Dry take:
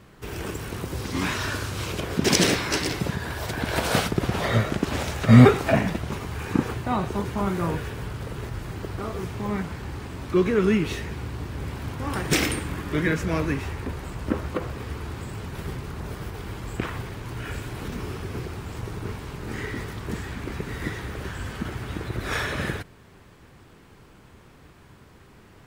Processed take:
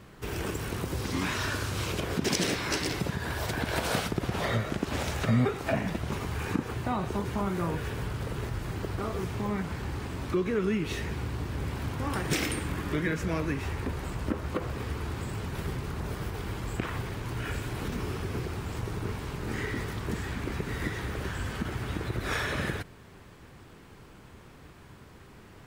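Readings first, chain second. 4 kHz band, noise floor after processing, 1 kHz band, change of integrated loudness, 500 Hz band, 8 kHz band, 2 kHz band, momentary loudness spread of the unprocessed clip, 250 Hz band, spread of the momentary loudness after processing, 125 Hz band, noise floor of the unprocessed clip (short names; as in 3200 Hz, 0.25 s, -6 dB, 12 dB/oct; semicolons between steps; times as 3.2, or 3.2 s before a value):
-5.0 dB, -51 dBFS, -4.5 dB, -5.5 dB, -6.0 dB, -5.5 dB, -4.5 dB, 13 LU, -7.0 dB, 10 LU, -5.5 dB, -51 dBFS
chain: compressor 2.5:1, threshold -28 dBFS, peak gain reduction 14 dB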